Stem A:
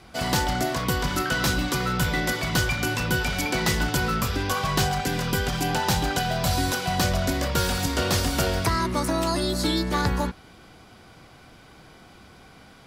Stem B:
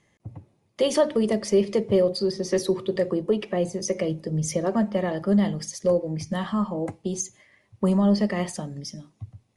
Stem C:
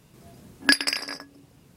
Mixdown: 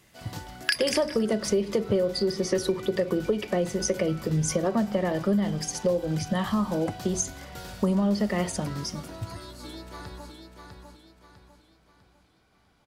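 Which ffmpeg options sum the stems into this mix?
-filter_complex "[0:a]volume=-18dB,asplit=2[a][b];[b]volume=-5.5dB[c];[1:a]volume=2.5dB[d];[2:a]highpass=f=1.5k:w=0.5412,highpass=f=1.5k:w=1.3066,volume=-0.5dB[e];[c]aecho=0:1:650|1300|1950|2600|3250|3900:1|0.4|0.16|0.064|0.0256|0.0102[f];[a][d][e][f]amix=inputs=4:normalize=0,acompressor=threshold=-21dB:ratio=6"

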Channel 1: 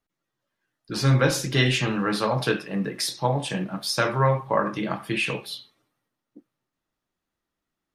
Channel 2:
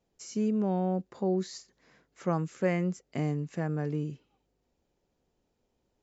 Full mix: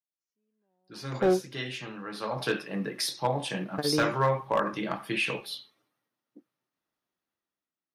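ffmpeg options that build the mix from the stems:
-filter_complex "[0:a]highpass=f=220:p=1,volume=-12.5dB,afade=t=in:st=2.13:d=0.45:silence=0.298538,asplit=2[a][b];[1:a]equalizer=f=130:w=1.2:g=-13.5,volume=-1dB,asplit=3[c][d][e];[c]atrim=end=1.44,asetpts=PTS-STARTPTS,afade=t=out:st=1.436:d=0.004:c=hsin[f];[d]atrim=start=1.44:end=3.78,asetpts=PTS-STARTPTS,volume=0[g];[e]atrim=start=3.78,asetpts=PTS-STARTPTS,afade=t=in:d=0.004:c=hsin[h];[f][g][h]concat=n=3:v=0:a=1[i];[b]apad=whole_len=265855[j];[i][j]sidechaingate=range=-50dB:threshold=-47dB:ratio=16:detection=peak[k];[a][k]amix=inputs=2:normalize=0,equalizer=f=7.5k:t=o:w=0.28:g=-6.5,dynaudnorm=f=150:g=9:m=10dB,asoftclip=type=hard:threshold=-17dB"

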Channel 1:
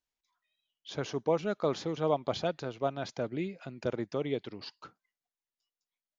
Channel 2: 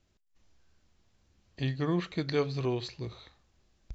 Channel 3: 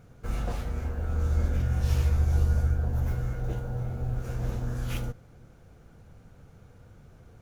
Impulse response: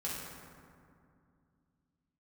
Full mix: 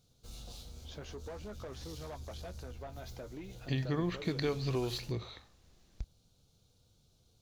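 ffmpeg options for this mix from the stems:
-filter_complex "[0:a]flanger=delay=6.3:depth=7.2:regen=48:speed=0.52:shape=triangular,volume=-2dB[a];[1:a]acompressor=threshold=-33dB:ratio=4,adelay=2100,volume=2.5dB[b];[2:a]highshelf=f=2.7k:t=q:w=3:g=13.5,volume=-17.5dB[c];[a][c]amix=inputs=2:normalize=0,asoftclip=type=tanh:threshold=-33.5dB,acompressor=threshold=-42dB:ratio=6,volume=0dB[d];[b][d]amix=inputs=2:normalize=0"

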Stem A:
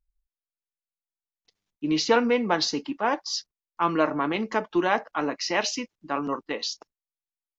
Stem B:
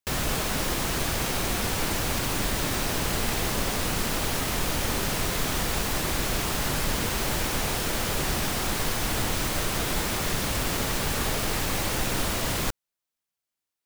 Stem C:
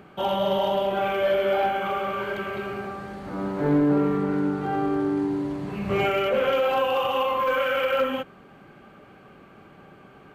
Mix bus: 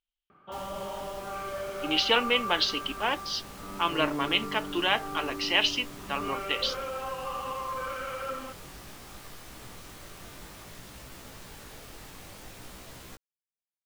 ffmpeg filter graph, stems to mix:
-filter_complex "[0:a]lowpass=f=3.1k:t=q:w=6.6,aemphasis=mode=production:type=bsi,volume=-5dB[a];[1:a]flanger=delay=15:depth=7.2:speed=0.56,adelay=450,volume=-16dB[b];[2:a]lowpass=2.8k,equalizer=f=1.2k:w=4.7:g=13,crystalizer=i=2:c=0,adelay=300,volume=-15dB[c];[a][b][c]amix=inputs=3:normalize=0"

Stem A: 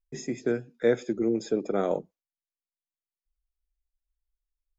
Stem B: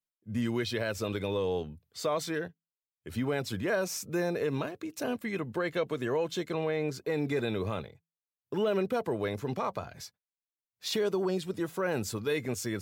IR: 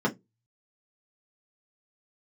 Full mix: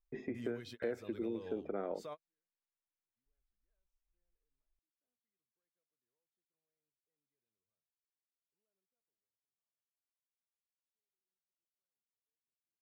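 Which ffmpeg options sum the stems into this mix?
-filter_complex "[0:a]lowpass=f=2.6k:w=0.5412,lowpass=f=2.6k:w=1.3066,equalizer=f=150:t=o:w=0.46:g=-9.5,volume=-3dB,asplit=2[a][b];[1:a]volume=-12dB,afade=t=out:st=8.76:d=0.67:silence=0.266073[c];[b]apad=whole_len=565360[d];[c][d]sidechaingate=range=-55dB:threshold=-50dB:ratio=16:detection=peak[e];[a][e]amix=inputs=2:normalize=0,acompressor=threshold=-38dB:ratio=3"

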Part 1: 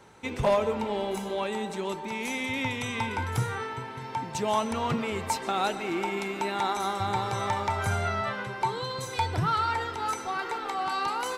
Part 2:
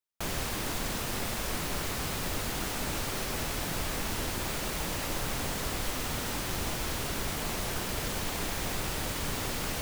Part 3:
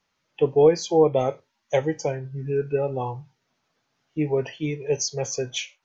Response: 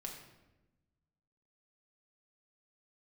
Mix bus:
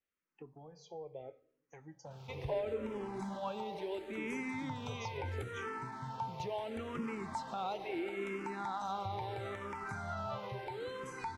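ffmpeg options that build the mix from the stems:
-filter_complex "[0:a]lowpass=f=2k:p=1,alimiter=level_in=1.5dB:limit=-24dB:level=0:latency=1:release=198,volume=-1.5dB,adelay=2050,volume=-2.5dB[a];[1:a]volume=35dB,asoftclip=hard,volume=-35dB,bandpass=f=3.2k:t=q:w=0.72:csg=0,adelay=1900,volume=-13dB[b];[2:a]volume=-16dB,asplit=2[c][d];[d]volume=-21.5dB[e];[b][c]amix=inputs=2:normalize=0,highshelf=f=3.5k:g=-9,acompressor=threshold=-42dB:ratio=12,volume=0dB[f];[3:a]atrim=start_sample=2205[g];[e][g]afir=irnorm=-1:irlink=0[h];[a][f][h]amix=inputs=3:normalize=0,asplit=2[i][j];[j]afreqshift=-0.74[k];[i][k]amix=inputs=2:normalize=1"

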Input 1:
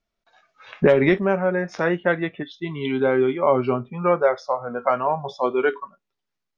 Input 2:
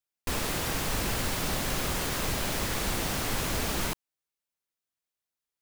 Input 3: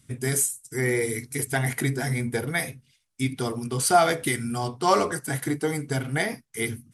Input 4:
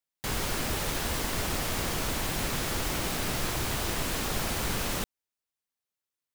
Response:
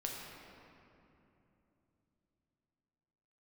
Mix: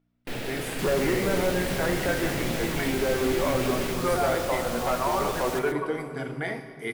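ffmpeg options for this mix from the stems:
-filter_complex "[0:a]asoftclip=type=tanh:threshold=-16.5dB,volume=-5dB,asplit=2[a][b];[b]volume=-3.5dB[c];[1:a]equalizer=f=1.1k:w=2.4:g=-13.5,aeval=exprs='val(0)+0.000631*(sin(2*PI*60*n/s)+sin(2*PI*2*60*n/s)/2+sin(2*PI*3*60*n/s)/3+sin(2*PI*4*60*n/s)/4+sin(2*PI*5*60*n/s)/5)':c=same,volume=-1.5dB,asplit=2[d][e];[e]volume=-6dB[f];[2:a]adelay=250,volume=-5.5dB,asplit=2[g][h];[h]volume=-9dB[i];[3:a]adelay=550,volume=-5dB,asplit=2[j][k];[k]volume=-8.5dB[l];[a][d][g]amix=inputs=3:normalize=0,highpass=170,lowpass=3.4k,alimiter=limit=-22.5dB:level=0:latency=1,volume=0dB[m];[4:a]atrim=start_sample=2205[n];[c][f][i]amix=inputs=3:normalize=0[o];[o][n]afir=irnorm=-1:irlink=0[p];[l]aecho=0:1:132:1[q];[j][m][p][q]amix=inputs=4:normalize=0"

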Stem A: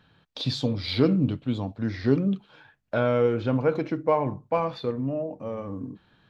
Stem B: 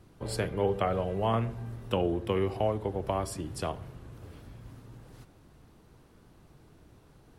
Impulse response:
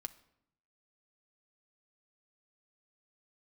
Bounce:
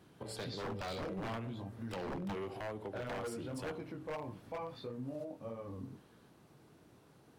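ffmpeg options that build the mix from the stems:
-filter_complex "[0:a]flanger=delay=16.5:depth=5.8:speed=1.6,volume=-6.5dB[a];[1:a]highpass=140,volume=-2.5dB[b];[a][b]amix=inputs=2:normalize=0,aeval=exprs='0.0473*(abs(mod(val(0)/0.0473+3,4)-2)-1)':c=same,alimiter=level_in=10.5dB:limit=-24dB:level=0:latency=1:release=224,volume=-10.5dB"

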